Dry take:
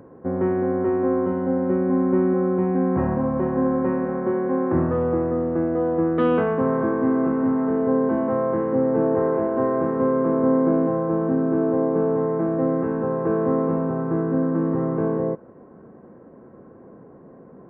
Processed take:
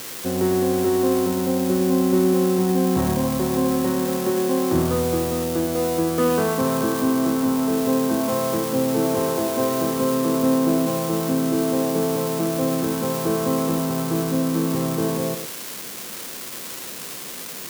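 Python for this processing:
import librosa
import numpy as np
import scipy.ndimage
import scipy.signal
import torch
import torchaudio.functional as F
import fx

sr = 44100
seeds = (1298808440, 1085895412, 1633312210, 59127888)

y = x + 0.5 * 10.0 ** (-17.0 / 20.0) * np.diff(np.sign(x), prepend=np.sign(x[:1]))
y = y + 10.0 ** (-10.5 / 20.0) * np.pad(y, (int(108 * sr / 1000.0), 0))[:len(y)]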